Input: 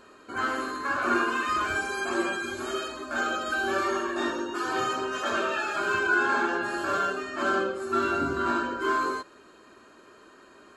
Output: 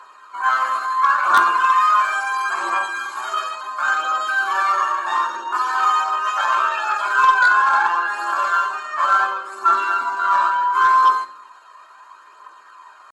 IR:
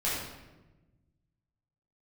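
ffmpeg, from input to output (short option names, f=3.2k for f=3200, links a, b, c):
-filter_complex "[0:a]highpass=f=1k:t=q:w=4.9,aphaser=in_gain=1:out_gain=1:delay=1.8:decay=0.37:speed=0.88:type=triangular,atempo=0.82,aeval=exprs='0.596*(cos(1*acos(clip(val(0)/0.596,-1,1)))-cos(1*PI/2))+0.119*(cos(5*acos(clip(val(0)/0.596,-1,1)))-cos(5*PI/2))+0.0596*(cos(7*acos(clip(val(0)/0.596,-1,1)))-cos(7*PI/2))':c=same,asplit=2[a][b];[1:a]atrim=start_sample=2205,asetrate=88200,aresample=44100,adelay=8[c];[b][c]afir=irnorm=-1:irlink=0,volume=-14dB[d];[a][d]amix=inputs=2:normalize=0"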